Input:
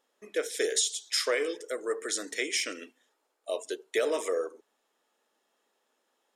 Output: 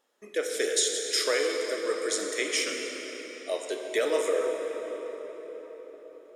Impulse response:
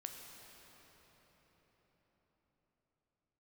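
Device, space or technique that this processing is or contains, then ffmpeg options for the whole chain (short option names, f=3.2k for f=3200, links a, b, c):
cathedral: -filter_complex "[1:a]atrim=start_sample=2205[a];[0:a][a]afir=irnorm=-1:irlink=0,volume=6dB"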